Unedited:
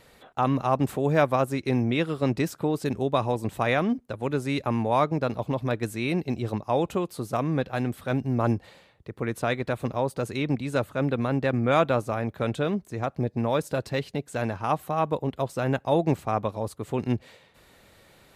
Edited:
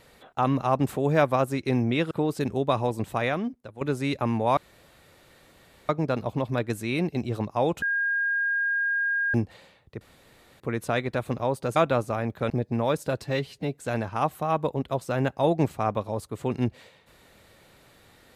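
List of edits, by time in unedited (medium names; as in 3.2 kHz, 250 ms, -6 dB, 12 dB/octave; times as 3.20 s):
2.11–2.56 s: delete
3.43–4.26 s: fade out, to -12 dB
5.02 s: insert room tone 1.32 s
6.95–8.47 s: bleep 1.62 kHz -22.5 dBFS
9.14 s: insert room tone 0.59 s
10.30–11.75 s: delete
12.49–13.15 s: delete
13.89–14.23 s: stretch 1.5×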